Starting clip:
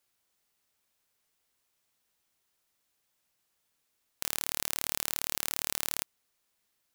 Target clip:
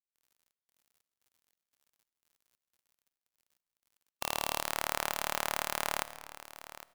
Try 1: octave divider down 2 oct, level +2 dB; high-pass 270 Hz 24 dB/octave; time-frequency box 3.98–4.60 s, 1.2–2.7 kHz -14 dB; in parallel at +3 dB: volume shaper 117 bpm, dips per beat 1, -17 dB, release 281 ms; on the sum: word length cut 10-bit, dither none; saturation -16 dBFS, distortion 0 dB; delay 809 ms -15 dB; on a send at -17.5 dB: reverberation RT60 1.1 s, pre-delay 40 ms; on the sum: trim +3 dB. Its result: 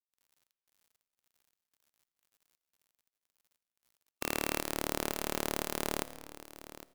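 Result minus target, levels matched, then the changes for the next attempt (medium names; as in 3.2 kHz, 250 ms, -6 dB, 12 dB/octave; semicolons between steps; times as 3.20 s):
250 Hz band +11.5 dB
change: high-pass 680 Hz 24 dB/octave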